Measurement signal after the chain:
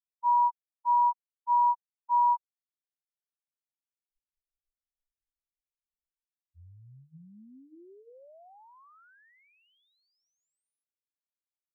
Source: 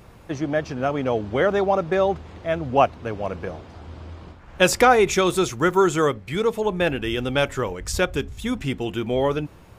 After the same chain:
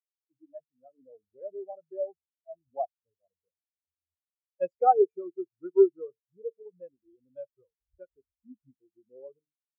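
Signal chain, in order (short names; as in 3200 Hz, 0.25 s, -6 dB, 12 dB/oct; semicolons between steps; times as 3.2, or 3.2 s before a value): de-hum 148.6 Hz, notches 3; spectral expander 4:1; gain -5.5 dB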